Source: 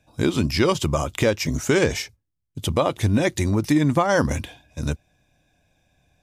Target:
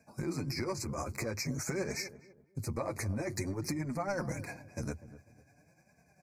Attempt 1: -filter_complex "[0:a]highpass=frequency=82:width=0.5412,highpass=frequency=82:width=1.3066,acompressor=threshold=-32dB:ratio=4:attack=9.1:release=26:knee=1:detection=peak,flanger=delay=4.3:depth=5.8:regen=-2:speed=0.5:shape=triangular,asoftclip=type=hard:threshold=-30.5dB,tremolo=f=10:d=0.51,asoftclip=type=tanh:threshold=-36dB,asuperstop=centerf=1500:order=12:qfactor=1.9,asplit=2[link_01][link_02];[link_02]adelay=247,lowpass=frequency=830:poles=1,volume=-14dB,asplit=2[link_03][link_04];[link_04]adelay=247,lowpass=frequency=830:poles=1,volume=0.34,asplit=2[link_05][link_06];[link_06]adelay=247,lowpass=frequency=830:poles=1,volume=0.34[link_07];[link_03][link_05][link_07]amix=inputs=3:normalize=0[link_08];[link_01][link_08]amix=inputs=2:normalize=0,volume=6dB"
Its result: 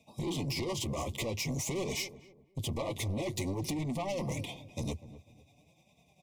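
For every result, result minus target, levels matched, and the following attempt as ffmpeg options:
soft clipping: distortion +21 dB; downward compressor: peak gain reduction −6 dB; 4,000 Hz band +4.5 dB
-filter_complex "[0:a]highpass=frequency=82:width=0.5412,highpass=frequency=82:width=1.3066,acompressor=threshold=-32dB:ratio=4:attack=9.1:release=26:knee=1:detection=peak,flanger=delay=4.3:depth=5.8:regen=-2:speed=0.5:shape=triangular,asoftclip=type=hard:threshold=-30.5dB,tremolo=f=10:d=0.51,asoftclip=type=tanh:threshold=-24dB,asuperstop=centerf=1500:order=12:qfactor=1.9,asplit=2[link_01][link_02];[link_02]adelay=247,lowpass=frequency=830:poles=1,volume=-14dB,asplit=2[link_03][link_04];[link_04]adelay=247,lowpass=frequency=830:poles=1,volume=0.34,asplit=2[link_05][link_06];[link_06]adelay=247,lowpass=frequency=830:poles=1,volume=0.34[link_07];[link_03][link_05][link_07]amix=inputs=3:normalize=0[link_08];[link_01][link_08]amix=inputs=2:normalize=0,volume=6dB"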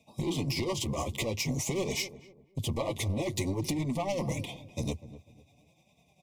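downward compressor: peak gain reduction −6 dB; 4,000 Hz band +4.0 dB
-filter_complex "[0:a]highpass=frequency=82:width=0.5412,highpass=frequency=82:width=1.3066,acompressor=threshold=-40dB:ratio=4:attack=9.1:release=26:knee=1:detection=peak,flanger=delay=4.3:depth=5.8:regen=-2:speed=0.5:shape=triangular,asoftclip=type=hard:threshold=-30.5dB,tremolo=f=10:d=0.51,asoftclip=type=tanh:threshold=-24dB,asuperstop=centerf=1500:order=12:qfactor=1.9,asplit=2[link_01][link_02];[link_02]adelay=247,lowpass=frequency=830:poles=1,volume=-14dB,asplit=2[link_03][link_04];[link_04]adelay=247,lowpass=frequency=830:poles=1,volume=0.34,asplit=2[link_05][link_06];[link_06]adelay=247,lowpass=frequency=830:poles=1,volume=0.34[link_07];[link_03][link_05][link_07]amix=inputs=3:normalize=0[link_08];[link_01][link_08]amix=inputs=2:normalize=0,volume=6dB"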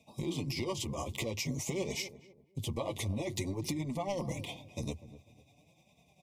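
4,000 Hz band +4.0 dB
-filter_complex "[0:a]highpass=frequency=82:width=0.5412,highpass=frequency=82:width=1.3066,acompressor=threshold=-40dB:ratio=4:attack=9.1:release=26:knee=1:detection=peak,flanger=delay=4.3:depth=5.8:regen=-2:speed=0.5:shape=triangular,asoftclip=type=hard:threshold=-30.5dB,tremolo=f=10:d=0.51,asoftclip=type=tanh:threshold=-24dB,asuperstop=centerf=3200:order=12:qfactor=1.9,asplit=2[link_01][link_02];[link_02]adelay=247,lowpass=frequency=830:poles=1,volume=-14dB,asplit=2[link_03][link_04];[link_04]adelay=247,lowpass=frequency=830:poles=1,volume=0.34,asplit=2[link_05][link_06];[link_06]adelay=247,lowpass=frequency=830:poles=1,volume=0.34[link_07];[link_03][link_05][link_07]amix=inputs=3:normalize=0[link_08];[link_01][link_08]amix=inputs=2:normalize=0,volume=6dB"

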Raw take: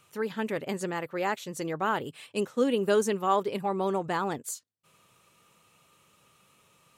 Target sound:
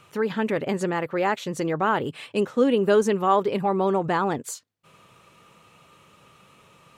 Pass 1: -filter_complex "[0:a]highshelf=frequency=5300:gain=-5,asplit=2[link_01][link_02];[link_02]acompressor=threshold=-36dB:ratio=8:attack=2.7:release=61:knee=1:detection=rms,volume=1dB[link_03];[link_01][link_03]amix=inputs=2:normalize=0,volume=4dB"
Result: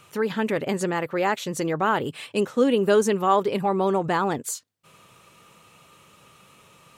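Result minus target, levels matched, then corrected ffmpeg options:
8,000 Hz band +4.5 dB
-filter_complex "[0:a]highshelf=frequency=5300:gain=-13,asplit=2[link_01][link_02];[link_02]acompressor=threshold=-36dB:ratio=8:attack=2.7:release=61:knee=1:detection=rms,volume=1dB[link_03];[link_01][link_03]amix=inputs=2:normalize=0,volume=4dB"

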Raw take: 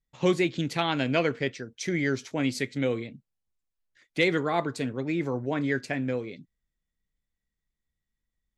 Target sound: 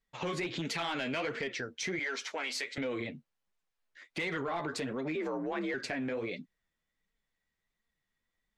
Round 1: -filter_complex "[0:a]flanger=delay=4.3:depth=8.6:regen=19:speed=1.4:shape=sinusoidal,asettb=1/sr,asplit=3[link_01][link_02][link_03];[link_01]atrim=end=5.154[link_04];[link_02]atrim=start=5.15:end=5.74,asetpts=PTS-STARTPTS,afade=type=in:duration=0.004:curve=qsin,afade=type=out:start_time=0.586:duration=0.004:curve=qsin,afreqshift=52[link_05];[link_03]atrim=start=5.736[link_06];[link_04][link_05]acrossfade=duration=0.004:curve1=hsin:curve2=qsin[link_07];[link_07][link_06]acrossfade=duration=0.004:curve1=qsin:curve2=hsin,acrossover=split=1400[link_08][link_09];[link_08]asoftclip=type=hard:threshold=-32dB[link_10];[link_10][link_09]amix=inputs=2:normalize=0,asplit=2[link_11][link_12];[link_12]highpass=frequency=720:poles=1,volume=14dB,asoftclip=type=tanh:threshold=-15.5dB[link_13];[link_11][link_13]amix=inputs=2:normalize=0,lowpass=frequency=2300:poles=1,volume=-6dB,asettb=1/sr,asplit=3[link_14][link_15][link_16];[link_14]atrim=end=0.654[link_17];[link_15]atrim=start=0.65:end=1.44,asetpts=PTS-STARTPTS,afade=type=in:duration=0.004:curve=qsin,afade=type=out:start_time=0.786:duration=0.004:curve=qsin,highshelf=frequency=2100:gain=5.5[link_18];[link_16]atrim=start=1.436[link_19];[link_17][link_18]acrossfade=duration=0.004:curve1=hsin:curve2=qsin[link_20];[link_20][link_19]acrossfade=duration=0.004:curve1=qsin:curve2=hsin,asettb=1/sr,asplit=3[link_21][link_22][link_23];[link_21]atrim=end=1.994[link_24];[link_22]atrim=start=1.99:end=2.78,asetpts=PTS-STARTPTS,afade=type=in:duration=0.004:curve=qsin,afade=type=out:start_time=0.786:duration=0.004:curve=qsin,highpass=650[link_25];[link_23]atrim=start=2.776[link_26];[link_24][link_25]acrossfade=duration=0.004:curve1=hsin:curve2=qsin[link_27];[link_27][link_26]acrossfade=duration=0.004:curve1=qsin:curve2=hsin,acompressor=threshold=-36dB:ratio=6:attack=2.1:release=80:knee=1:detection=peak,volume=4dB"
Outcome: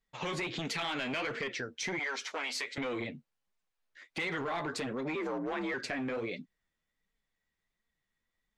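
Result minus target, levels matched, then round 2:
hard clipping: distortion +11 dB
-filter_complex "[0:a]flanger=delay=4.3:depth=8.6:regen=19:speed=1.4:shape=sinusoidal,asettb=1/sr,asplit=3[link_01][link_02][link_03];[link_01]atrim=end=5.154[link_04];[link_02]atrim=start=5.15:end=5.74,asetpts=PTS-STARTPTS,afade=type=in:duration=0.004:curve=qsin,afade=type=out:start_time=0.586:duration=0.004:curve=qsin,afreqshift=52[link_05];[link_03]atrim=start=5.736[link_06];[link_04][link_05]acrossfade=duration=0.004:curve1=hsin:curve2=qsin[link_07];[link_07][link_06]acrossfade=duration=0.004:curve1=qsin:curve2=hsin,acrossover=split=1400[link_08][link_09];[link_08]asoftclip=type=hard:threshold=-23dB[link_10];[link_10][link_09]amix=inputs=2:normalize=0,asplit=2[link_11][link_12];[link_12]highpass=frequency=720:poles=1,volume=14dB,asoftclip=type=tanh:threshold=-15.5dB[link_13];[link_11][link_13]amix=inputs=2:normalize=0,lowpass=frequency=2300:poles=1,volume=-6dB,asettb=1/sr,asplit=3[link_14][link_15][link_16];[link_14]atrim=end=0.654[link_17];[link_15]atrim=start=0.65:end=1.44,asetpts=PTS-STARTPTS,afade=type=in:duration=0.004:curve=qsin,afade=type=out:start_time=0.786:duration=0.004:curve=qsin,highshelf=frequency=2100:gain=5.5[link_18];[link_16]atrim=start=1.436[link_19];[link_17][link_18]acrossfade=duration=0.004:curve1=hsin:curve2=qsin[link_20];[link_20][link_19]acrossfade=duration=0.004:curve1=qsin:curve2=hsin,asettb=1/sr,asplit=3[link_21][link_22][link_23];[link_21]atrim=end=1.994[link_24];[link_22]atrim=start=1.99:end=2.78,asetpts=PTS-STARTPTS,afade=type=in:duration=0.004:curve=qsin,afade=type=out:start_time=0.786:duration=0.004:curve=qsin,highpass=650[link_25];[link_23]atrim=start=2.776[link_26];[link_24][link_25]acrossfade=duration=0.004:curve1=hsin:curve2=qsin[link_27];[link_27][link_26]acrossfade=duration=0.004:curve1=qsin:curve2=hsin,acompressor=threshold=-36dB:ratio=6:attack=2.1:release=80:knee=1:detection=peak,volume=4dB"

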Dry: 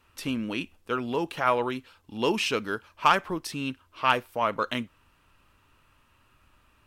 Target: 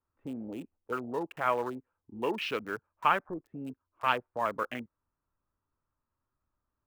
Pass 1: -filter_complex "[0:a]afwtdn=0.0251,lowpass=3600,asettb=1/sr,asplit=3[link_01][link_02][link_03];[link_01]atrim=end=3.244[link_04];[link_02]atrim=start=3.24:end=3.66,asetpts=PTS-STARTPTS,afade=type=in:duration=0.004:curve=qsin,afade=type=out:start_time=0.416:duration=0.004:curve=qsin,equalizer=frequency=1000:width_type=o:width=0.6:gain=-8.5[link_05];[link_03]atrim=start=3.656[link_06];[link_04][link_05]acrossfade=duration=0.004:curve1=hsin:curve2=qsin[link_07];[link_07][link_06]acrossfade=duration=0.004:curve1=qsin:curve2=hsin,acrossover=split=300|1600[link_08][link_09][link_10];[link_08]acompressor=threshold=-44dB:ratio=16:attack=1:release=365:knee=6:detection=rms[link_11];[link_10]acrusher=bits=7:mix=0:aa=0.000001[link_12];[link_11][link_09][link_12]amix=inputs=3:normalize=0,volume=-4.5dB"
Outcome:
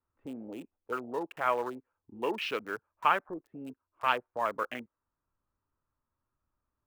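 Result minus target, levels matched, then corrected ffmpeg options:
downward compressor: peak gain reduction +8.5 dB
-filter_complex "[0:a]afwtdn=0.0251,lowpass=3600,asettb=1/sr,asplit=3[link_01][link_02][link_03];[link_01]atrim=end=3.244[link_04];[link_02]atrim=start=3.24:end=3.66,asetpts=PTS-STARTPTS,afade=type=in:duration=0.004:curve=qsin,afade=type=out:start_time=0.416:duration=0.004:curve=qsin,equalizer=frequency=1000:width_type=o:width=0.6:gain=-8.5[link_05];[link_03]atrim=start=3.656[link_06];[link_04][link_05]acrossfade=duration=0.004:curve1=hsin:curve2=qsin[link_07];[link_07][link_06]acrossfade=duration=0.004:curve1=qsin:curve2=hsin,acrossover=split=300|1600[link_08][link_09][link_10];[link_08]acompressor=threshold=-35dB:ratio=16:attack=1:release=365:knee=6:detection=rms[link_11];[link_10]acrusher=bits=7:mix=0:aa=0.000001[link_12];[link_11][link_09][link_12]amix=inputs=3:normalize=0,volume=-4.5dB"

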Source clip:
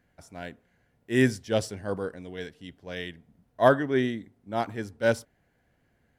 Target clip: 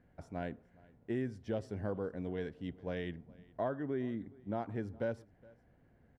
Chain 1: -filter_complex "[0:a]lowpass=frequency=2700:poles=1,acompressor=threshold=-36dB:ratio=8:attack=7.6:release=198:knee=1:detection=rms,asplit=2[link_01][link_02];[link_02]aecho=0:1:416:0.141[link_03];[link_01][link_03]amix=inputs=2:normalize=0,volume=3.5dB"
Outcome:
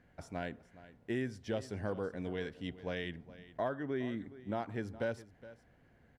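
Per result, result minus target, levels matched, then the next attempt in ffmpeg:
2,000 Hz band +4.5 dB; echo-to-direct +7 dB
-filter_complex "[0:a]lowpass=frequency=770:poles=1,acompressor=threshold=-36dB:ratio=8:attack=7.6:release=198:knee=1:detection=rms,asplit=2[link_01][link_02];[link_02]aecho=0:1:416:0.141[link_03];[link_01][link_03]amix=inputs=2:normalize=0,volume=3.5dB"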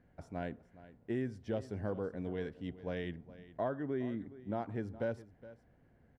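echo-to-direct +7 dB
-filter_complex "[0:a]lowpass=frequency=770:poles=1,acompressor=threshold=-36dB:ratio=8:attack=7.6:release=198:knee=1:detection=rms,asplit=2[link_01][link_02];[link_02]aecho=0:1:416:0.0631[link_03];[link_01][link_03]amix=inputs=2:normalize=0,volume=3.5dB"

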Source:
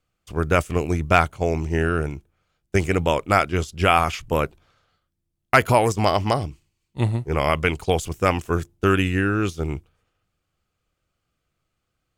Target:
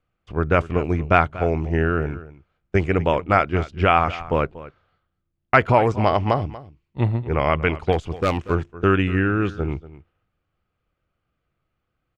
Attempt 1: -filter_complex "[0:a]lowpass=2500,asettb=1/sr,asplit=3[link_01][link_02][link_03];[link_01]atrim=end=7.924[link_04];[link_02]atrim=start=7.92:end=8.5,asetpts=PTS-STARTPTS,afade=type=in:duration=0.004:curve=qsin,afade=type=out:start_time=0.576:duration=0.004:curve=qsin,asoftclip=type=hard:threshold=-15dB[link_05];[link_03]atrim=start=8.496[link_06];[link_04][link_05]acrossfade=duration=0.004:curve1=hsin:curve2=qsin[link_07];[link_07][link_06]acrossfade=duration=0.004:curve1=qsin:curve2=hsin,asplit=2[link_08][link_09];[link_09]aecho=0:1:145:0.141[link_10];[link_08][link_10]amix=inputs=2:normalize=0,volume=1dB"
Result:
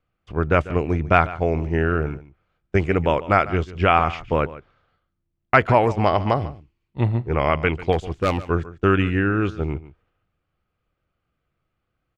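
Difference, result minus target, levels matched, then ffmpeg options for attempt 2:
echo 92 ms early
-filter_complex "[0:a]lowpass=2500,asettb=1/sr,asplit=3[link_01][link_02][link_03];[link_01]atrim=end=7.924[link_04];[link_02]atrim=start=7.92:end=8.5,asetpts=PTS-STARTPTS,afade=type=in:duration=0.004:curve=qsin,afade=type=out:start_time=0.576:duration=0.004:curve=qsin,asoftclip=type=hard:threshold=-15dB[link_05];[link_03]atrim=start=8.496[link_06];[link_04][link_05]acrossfade=duration=0.004:curve1=hsin:curve2=qsin[link_07];[link_07][link_06]acrossfade=duration=0.004:curve1=qsin:curve2=hsin,asplit=2[link_08][link_09];[link_09]aecho=0:1:237:0.141[link_10];[link_08][link_10]amix=inputs=2:normalize=0,volume=1dB"

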